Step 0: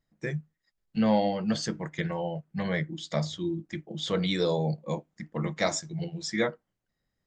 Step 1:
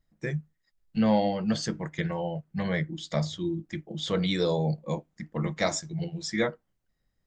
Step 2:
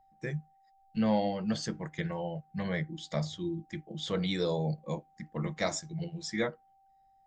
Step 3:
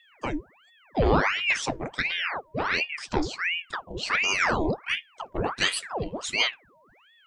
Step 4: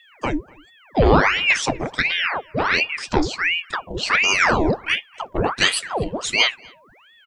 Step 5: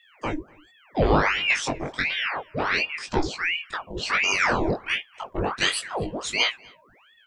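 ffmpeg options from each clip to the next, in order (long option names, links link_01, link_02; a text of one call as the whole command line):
ffmpeg -i in.wav -af "lowshelf=frequency=61:gain=11.5" out.wav
ffmpeg -i in.wav -af "aeval=exprs='val(0)+0.00126*sin(2*PI*780*n/s)':channel_layout=same,volume=-4.5dB" out.wav
ffmpeg -i in.wav -af "aeval=exprs='val(0)*sin(2*PI*1400*n/s+1400*0.9/1.4*sin(2*PI*1.4*n/s))':channel_layout=same,volume=9dB" out.wav
ffmpeg -i in.wav -filter_complex "[0:a]asplit=2[link_01][link_02];[link_02]adelay=244.9,volume=-26dB,highshelf=frequency=4000:gain=-5.51[link_03];[link_01][link_03]amix=inputs=2:normalize=0,volume=7dB" out.wav
ffmpeg -i in.wav -af "flanger=delay=18.5:depth=2.8:speed=0.3,volume=-2dB" out.wav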